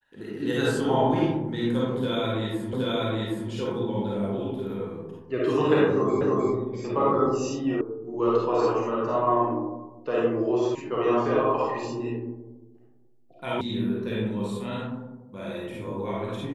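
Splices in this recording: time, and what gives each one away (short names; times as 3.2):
2.73 repeat of the last 0.77 s
6.21 repeat of the last 0.31 s
7.81 sound cut off
10.75 sound cut off
13.61 sound cut off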